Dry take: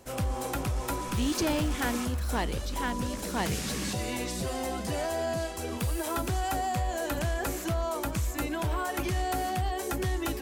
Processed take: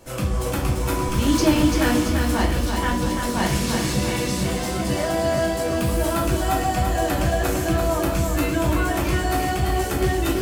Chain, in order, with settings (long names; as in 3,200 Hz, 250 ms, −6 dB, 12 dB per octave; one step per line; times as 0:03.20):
convolution reverb RT60 0.50 s, pre-delay 3 ms, DRR −3 dB
feedback echo at a low word length 340 ms, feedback 55%, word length 8 bits, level −5 dB
level +2 dB